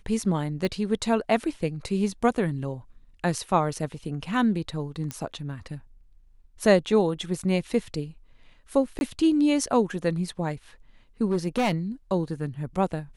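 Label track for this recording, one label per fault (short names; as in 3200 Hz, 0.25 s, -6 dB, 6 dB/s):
0.650000	0.650000	pop -16 dBFS
5.110000	5.110000	pop -16 dBFS
8.990000	9.010000	gap 21 ms
11.310000	11.720000	clipped -19 dBFS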